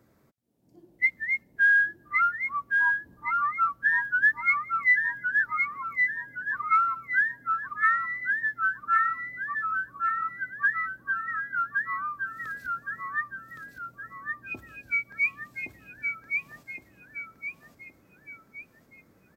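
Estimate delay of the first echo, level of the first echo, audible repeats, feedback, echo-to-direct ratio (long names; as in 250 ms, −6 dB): 1,117 ms, −3.5 dB, 5, 43%, −2.5 dB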